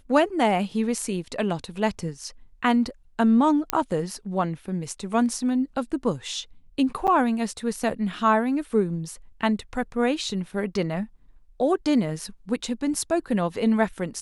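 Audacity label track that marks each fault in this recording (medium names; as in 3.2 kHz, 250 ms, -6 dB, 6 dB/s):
3.700000	3.700000	pop -5 dBFS
7.070000	7.080000	dropout 8 ms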